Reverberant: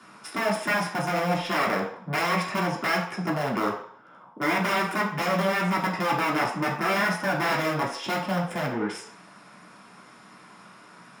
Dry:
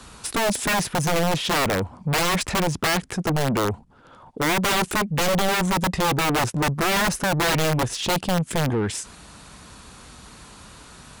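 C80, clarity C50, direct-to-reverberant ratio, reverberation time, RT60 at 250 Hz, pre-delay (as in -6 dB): 9.5 dB, 6.0 dB, -4.0 dB, 0.65 s, 0.45 s, 3 ms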